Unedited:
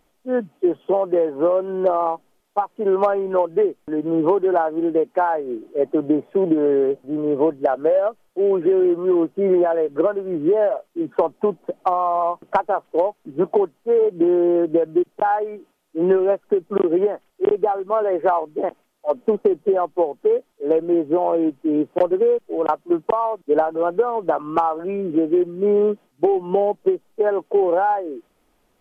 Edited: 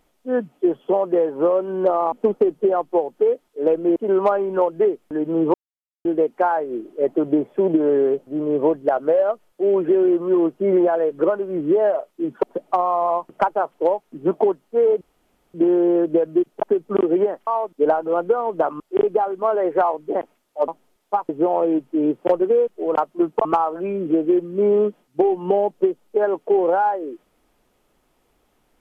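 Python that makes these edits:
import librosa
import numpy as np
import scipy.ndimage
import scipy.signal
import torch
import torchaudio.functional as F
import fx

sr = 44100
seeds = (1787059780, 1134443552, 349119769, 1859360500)

y = fx.edit(x, sr, fx.swap(start_s=2.12, length_s=0.61, other_s=19.16, other_length_s=1.84),
    fx.silence(start_s=4.31, length_s=0.51),
    fx.cut(start_s=11.2, length_s=0.36),
    fx.insert_room_tone(at_s=14.14, length_s=0.53),
    fx.cut(start_s=15.23, length_s=1.21),
    fx.move(start_s=23.16, length_s=1.33, to_s=17.28), tone=tone)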